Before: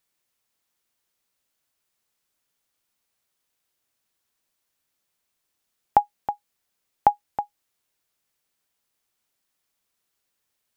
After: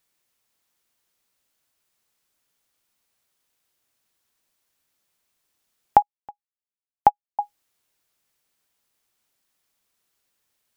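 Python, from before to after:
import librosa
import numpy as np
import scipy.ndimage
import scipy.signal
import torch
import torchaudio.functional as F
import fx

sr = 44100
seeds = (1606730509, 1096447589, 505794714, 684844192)

y = fx.upward_expand(x, sr, threshold_db=-33.0, expansion=2.5, at=(6.02, 7.39))
y = y * librosa.db_to_amplitude(3.0)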